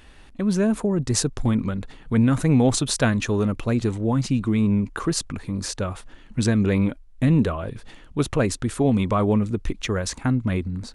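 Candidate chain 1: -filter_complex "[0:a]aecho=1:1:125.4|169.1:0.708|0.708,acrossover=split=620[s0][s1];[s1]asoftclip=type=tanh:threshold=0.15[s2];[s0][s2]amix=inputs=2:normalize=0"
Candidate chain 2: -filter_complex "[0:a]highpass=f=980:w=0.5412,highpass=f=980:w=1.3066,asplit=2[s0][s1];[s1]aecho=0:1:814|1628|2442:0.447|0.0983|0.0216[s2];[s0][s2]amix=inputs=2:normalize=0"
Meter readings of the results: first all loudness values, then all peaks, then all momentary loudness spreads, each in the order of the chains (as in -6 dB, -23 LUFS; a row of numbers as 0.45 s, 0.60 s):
-20.0 LUFS, -32.0 LUFS; -3.5 dBFS, -6.5 dBFS; 9 LU, 12 LU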